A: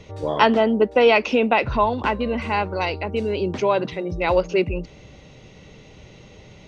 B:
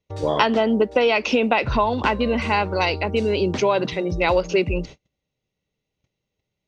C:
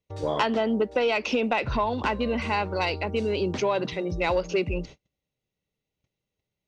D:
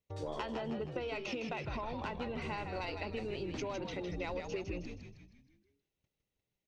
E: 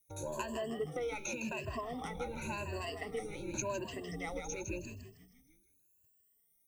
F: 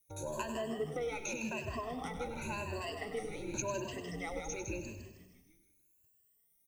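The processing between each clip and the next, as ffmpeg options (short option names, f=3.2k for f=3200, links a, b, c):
-af "agate=range=-39dB:threshold=-38dB:ratio=16:detection=peak,equalizer=f=5.4k:w=0.71:g=5,acompressor=threshold=-17dB:ratio=10,volume=3dB"
-af "asoftclip=type=tanh:threshold=-7.5dB,volume=-5dB"
-filter_complex "[0:a]acompressor=threshold=-32dB:ratio=6,asplit=2[a][b];[b]asplit=6[c][d][e][f][g][h];[c]adelay=158,afreqshift=-76,volume=-6dB[i];[d]adelay=316,afreqshift=-152,volume=-12dB[j];[e]adelay=474,afreqshift=-228,volume=-18dB[k];[f]adelay=632,afreqshift=-304,volume=-24.1dB[l];[g]adelay=790,afreqshift=-380,volume=-30.1dB[m];[h]adelay=948,afreqshift=-456,volume=-36.1dB[n];[i][j][k][l][m][n]amix=inputs=6:normalize=0[o];[a][o]amix=inputs=2:normalize=0,volume=-5.5dB"
-filter_complex "[0:a]afftfilt=real='re*pow(10,21/40*sin(2*PI*(1.4*log(max(b,1)*sr/1024/100)/log(2)-(0.9)*(pts-256)/sr)))':imag='im*pow(10,21/40*sin(2*PI*(1.4*log(max(b,1)*sr/1024/100)/log(2)-(0.9)*(pts-256)/sr)))':win_size=1024:overlap=0.75,acrossover=split=430|1700[a][b][c];[c]aexciter=amount=15.1:drive=2.3:freq=6.8k[d];[a][b][d]amix=inputs=3:normalize=0,volume=-5dB"
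-af "aecho=1:1:99|198|297|396|495|594:0.282|0.152|0.0822|0.0444|0.024|0.0129"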